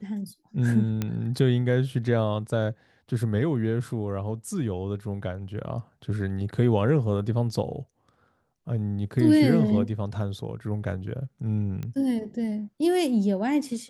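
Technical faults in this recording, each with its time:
0:01.02: click −14 dBFS
0:11.83: click −22 dBFS

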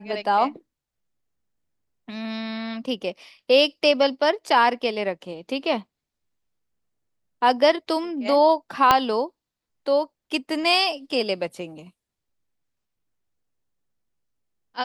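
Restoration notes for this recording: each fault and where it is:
0:08.91: click −2 dBFS

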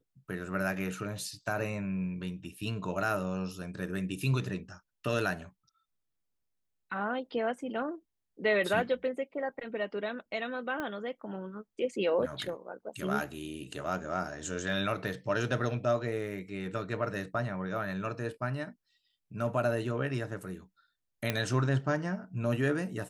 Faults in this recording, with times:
0:10.80: click −22 dBFS
0:21.30: click −14 dBFS

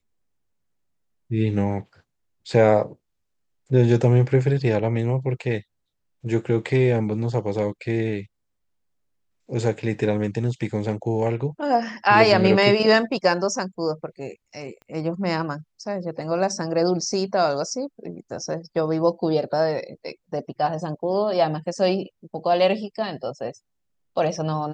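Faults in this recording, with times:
0:14.82: click −33 dBFS

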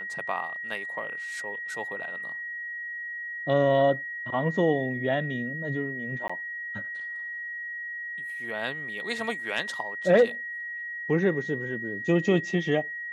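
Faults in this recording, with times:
whistle 1,900 Hz −33 dBFS
0:06.28–0:06.29: drop-out 15 ms

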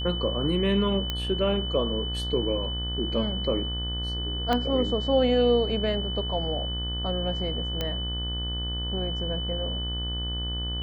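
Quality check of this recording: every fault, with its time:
mains buzz 60 Hz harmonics 32 −32 dBFS
whistle 3,000 Hz −32 dBFS
0:01.10: click −14 dBFS
0:04.53: click −13 dBFS
0:07.81: click −14 dBFS

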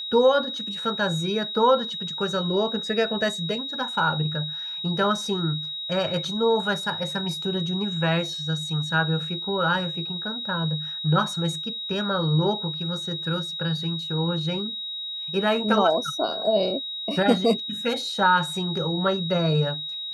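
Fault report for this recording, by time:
whistle 3,800 Hz −30 dBFS

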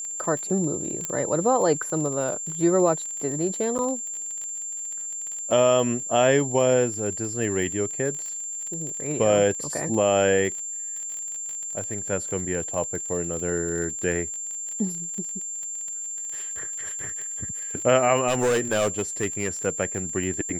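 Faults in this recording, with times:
surface crackle 28 per second −30 dBFS
whistle 7,300 Hz −30 dBFS
0:01.05: click −13 dBFS
0:03.78–0:03.79: drop-out 9.2 ms
0:18.27–0:19.67: clipping −18 dBFS

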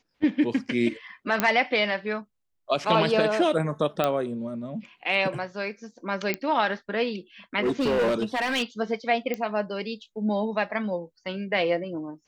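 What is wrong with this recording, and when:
0:01.40: click −7 dBFS
0:04.04: click −10 dBFS
0:06.34: click −12 dBFS
0:07.63–0:08.63: clipping −20 dBFS
0:09.34: click −16 dBFS

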